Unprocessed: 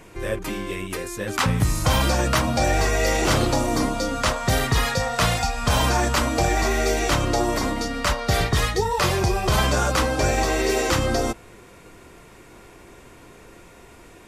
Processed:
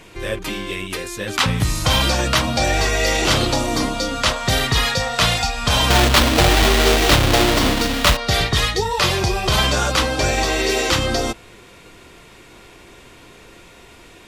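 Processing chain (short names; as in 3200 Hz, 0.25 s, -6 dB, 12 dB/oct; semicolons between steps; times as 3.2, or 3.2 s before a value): 5.9–8.17 half-waves squared off; bell 3500 Hz +8.5 dB 1.3 oct; gain +1 dB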